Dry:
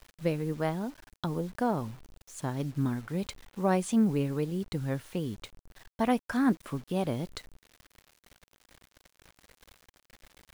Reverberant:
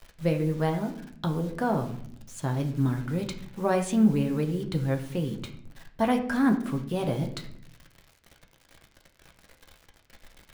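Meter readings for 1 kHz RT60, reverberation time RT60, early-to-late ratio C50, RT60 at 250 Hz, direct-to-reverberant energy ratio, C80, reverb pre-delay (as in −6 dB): 0.50 s, 0.60 s, 10.0 dB, 0.95 s, 3.5 dB, 13.5 dB, 6 ms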